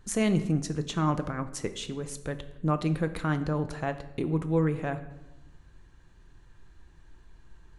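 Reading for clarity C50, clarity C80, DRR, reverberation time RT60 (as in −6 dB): 13.0 dB, 15.0 dB, 9.5 dB, 0.95 s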